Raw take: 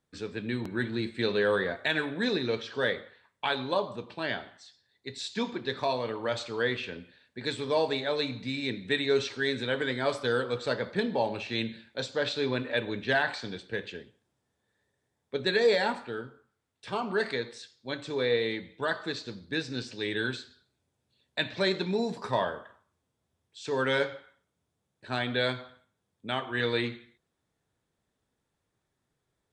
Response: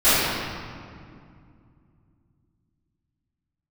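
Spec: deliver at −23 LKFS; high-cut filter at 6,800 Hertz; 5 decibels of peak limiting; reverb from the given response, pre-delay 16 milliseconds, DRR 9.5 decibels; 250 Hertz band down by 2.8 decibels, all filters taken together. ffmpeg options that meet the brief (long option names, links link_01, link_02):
-filter_complex "[0:a]lowpass=6800,equalizer=frequency=250:width_type=o:gain=-3.5,alimiter=limit=-19.5dB:level=0:latency=1,asplit=2[link_01][link_02];[1:a]atrim=start_sample=2205,adelay=16[link_03];[link_02][link_03]afir=irnorm=-1:irlink=0,volume=-33dB[link_04];[link_01][link_04]amix=inputs=2:normalize=0,volume=9.5dB"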